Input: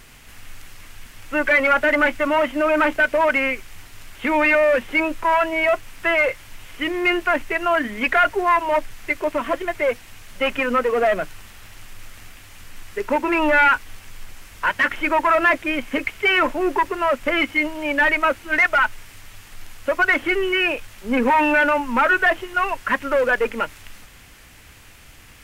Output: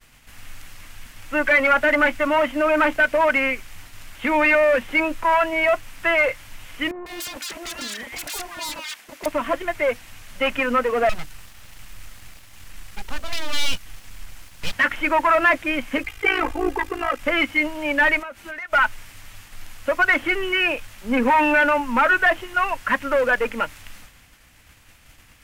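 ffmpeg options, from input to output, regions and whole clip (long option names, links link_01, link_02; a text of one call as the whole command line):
ffmpeg -i in.wav -filter_complex "[0:a]asettb=1/sr,asplit=3[link_01][link_02][link_03];[link_01]atrim=end=6.914[link_04];[link_02]atrim=start=6.91:end=9.26,asetpts=PTS-STARTPTS,afade=type=in:duration=0.004:curve=qsin,afade=type=out:start_time=2.346:duration=0.004:curve=qsin,highpass=380,aeval=exprs='0.0531*(abs(mod(val(0)/0.0531+3,4)-2)-1)':channel_layout=same,acrossover=split=1200[link_05][link_06];[link_06]adelay=150[link_07];[link_05][link_07]amix=inputs=2:normalize=0,atrim=end_sample=103635[link_08];[link_03]atrim=start=9.256[link_09];[link_04][link_08]acrossfade=duration=0.004:curve1=hsin:curve2=qsin[link_10];[link_10][link_09]acrossfade=duration=0.004:curve1=qsin:curve2=hsin,asettb=1/sr,asplit=3[link_11][link_12][link_13];[link_11]atrim=end=11.094[link_14];[link_12]atrim=start=11.09:end=14.73,asetpts=PTS-STARTPTS,afade=type=in:duration=0.004:curve=qsin,afade=type=out:start_time=3.636:duration=0.004:curve=qsin,aeval=exprs='abs(val(0))':channel_layout=same,acrossover=split=190|3000[link_15][link_16][link_17];[link_16]acompressor=threshold=-51dB:ratio=1.5:attack=3.2:release=140:knee=2.83:detection=peak[link_18];[link_15][link_18][link_17]amix=inputs=3:normalize=0[link_19];[link_13]atrim=start=14.726[link_20];[link_14][link_19]acrossfade=duration=0.004:curve1=hsin:curve2=qsin[link_21];[link_21][link_20]acrossfade=duration=0.004:curve1=qsin:curve2=hsin,asettb=1/sr,asplit=3[link_22][link_23][link_24];[link_22]atrim=end=16.034[link_25];[link_23]atrim=start=16.03:end=17.2,asetpts=PTS-STARTPTS,afade=type=in:duration=0.004:curve=qsin,afade=type=out:start_time=1.166:duration=0.004:curve=qsin,tremolo=f=55:d=0.857,aecho=1:1:2.5:0.95,atrim=end_sample=51597[link_26];[link_24]atrim=start=17.196[link_27];[link_25][link_26]acrossfade=duration=0.004:curve1=hsin:curve2=qsin[link_28];[link_28][link_27]acrossfade=duration=0.004:curve1=qsin:curve2=hsin,asettb=1/sr,asplit=3[link_29][link_30][link_31];[link_29]atrim=end=18.194[link_32];[link_30]atrim=start=18.19:end=18.73,asetpts=PTS-STARTPTS,afade=type=in:duration=0.004:curve=qsin,afade=type=out:start_time=0.536:duration=0.004:curve=qsin,highpass=frequency=44:poles=1,aecho=1:1:5:0.35,atrim=end_sample=23814,acompressor=threshold=-30dB:ratio=12:attack=3.2:release=140:knee=1:detection=peak[link_33];[link_31]atrim=start=18.726[link_34];[link_32][link_33]acrossfade=duration=0.004:curve1=hsin:curve2=qsin[link_35];[link_35][link_34]acrossfade=duration=0.004:curve1=qsin:curve2=hsin,agate=range=-33dB:threshold=-40dB:ratio=3:detection=peak,equalizer=frequency=400:width_type=o:width=0.33:gain=-6.5" out.wav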